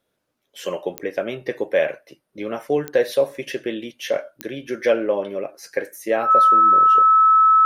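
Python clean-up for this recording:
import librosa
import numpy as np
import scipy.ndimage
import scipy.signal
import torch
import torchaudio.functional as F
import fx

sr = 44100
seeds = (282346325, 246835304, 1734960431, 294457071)

y = fx.fix_declick_ar(x, sr, threshold=10.0)
y = fx.notch(y, sr, hz=1300.0, q=30.0)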